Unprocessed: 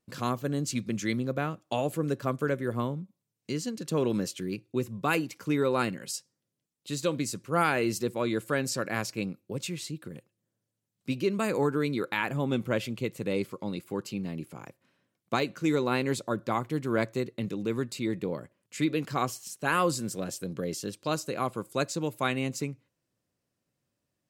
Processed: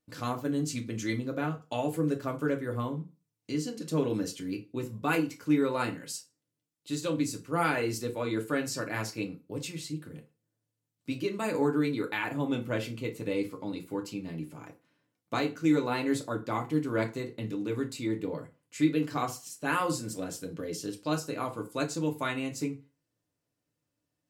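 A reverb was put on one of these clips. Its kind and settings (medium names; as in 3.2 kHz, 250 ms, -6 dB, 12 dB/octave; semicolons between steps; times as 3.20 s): FDN reverb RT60 0.3 s, low-frequency decay 1×, high-frequency decay 0.8×, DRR 1.5 dB; trim -4.5 dB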